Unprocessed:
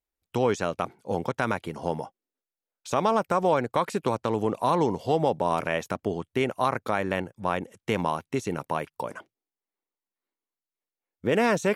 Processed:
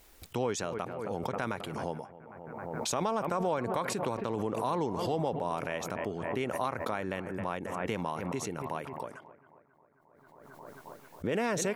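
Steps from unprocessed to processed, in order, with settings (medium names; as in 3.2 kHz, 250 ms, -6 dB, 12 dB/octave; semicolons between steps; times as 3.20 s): bucket-brigade echo 268 ms, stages 4096, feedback 53%, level -17 dB; swell ahead of each attack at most 28 dB/s; trim -8.5 dB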